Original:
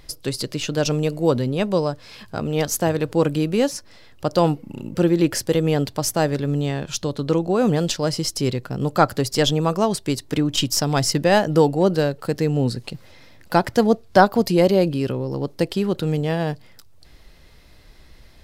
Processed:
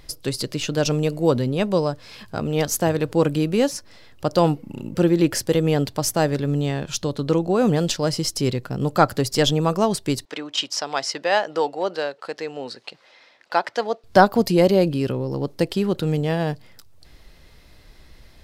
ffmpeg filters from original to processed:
-filter_complex "[0:a]asettb=1/sr,asplit=3[a][b][c];[a]atrim=end=10.254[d];[b]atrim=start=10.25:end=14.04,asetpts=PTS-STARTPTS,afade=t=in:d=0.004:c=qsin,afade=t=out:st=3.786:d=0.004:c=qsin,highpass=630,lowpass=4.9k[e];[c]atrim=start=14.036[f];[d][e]acrossfade=d=0.004:c1=hsin:c2=qsin[g];[g][f]acrossfade=d=0.004:c1=qsin:c2=hsin"

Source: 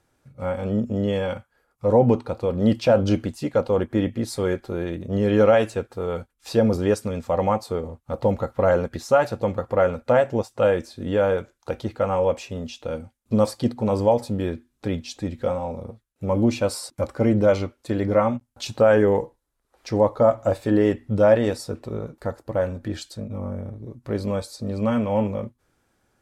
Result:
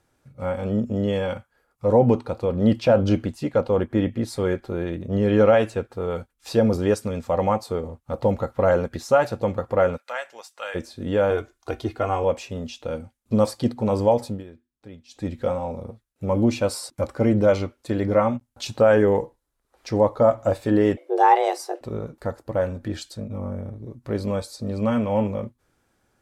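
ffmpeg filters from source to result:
-filter_complex "[0:a]asettb=1/sr,asplit=3[a][b][c];[a]atrim=end=2.444[d];[b]atrim=start=2.44:end=6.11,asetpts=PTS-STARTPTS,afade=t=in:d=0.004:c=qsin,afade=t=out:st=3.666:d=0.004:c=qsin,bass=f=250:g=1,treble=f=4k:g=-4[e];[c]atrim=start=6.106[f];[d][e]acrossfade=d=0.004:c1=hsin:c2=qsin[g];[g][f]acrossfade=d=0.004:c1=qsin:c2=hsin,asplit=3[h][i][j];[h]afade=t=out:st=9.96:d=0.02[k];[i]highpass=1.5k,afade=t=in:st=9.96:d=0.02,afade=t=out:st=10.74:d=0.02[l];[j]afade=t=in:st=10.74:d=0.02[m];[k][l][m]amix=inputs=3:normalize=0,asettb=1/sr,asplit=3[n][o][p];[n]atrim=end=11.304[q];[o]atrim=start=11.3:end=12.24,asetpts=PTS-STARTPTS,afade=t=in:d=0.004:c=qsin,afade=t=out:st=0.936:d=0.004:c=qsin,aecho=1:1:2.8:0.73,atrim=end_sample=41454[r];[p]atrim=start=12.236[s];[q][r]acrossfade=d=0.004:c1=hsin:c2=qsin[t];[t][s]acrossfade=d=0.004:c1=qsin:c2=hsin,asettb=1/sr,asplit=3[u][v][w];[u]atrim=end=20.974[x];[v]atrim=start=20.97:end=21.81,asetpts=PTS-STARTPTS,afade=t=in:d=0.004:c=qsin,afade=t=out:st=0.836:d=0.004:c=qsin,afreqshift=260[y];[w]atrim=start=21.806[z];[x][y]acrossfade=d=0.004:c1=hsin:c2=qsin[aa];[aa][z]acrossfade=d=0.004:c1=qsin:c2=hsin,asplit=3[ab][ac][ad];[ab]atrim=end=14.44,asetpts=PTS-STARTPTS,afade=t=out:st=14.26:d=0.18:silence=0.149624[ae];[ac]atrim=start=14.44:end=15.08,asetpts=PTS-STARTPTS,volume=-16.5dB[af];[ad]atrim=start=15.08,asetpts=PTS-STARTPTS,afade=t=in:d=0.18:silence=0.149624[ag];[ae][af][ag]concat=n=3:v=0:a=1"

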